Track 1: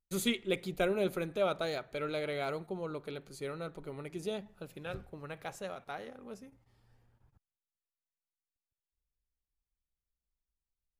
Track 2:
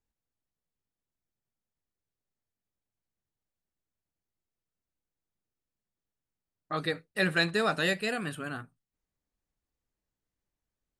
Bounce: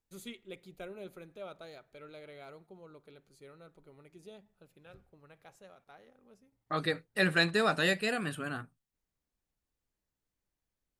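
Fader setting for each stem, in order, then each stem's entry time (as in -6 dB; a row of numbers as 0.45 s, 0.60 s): -14.0 dB, -0.5 dB; 0.00 s, 0.00 s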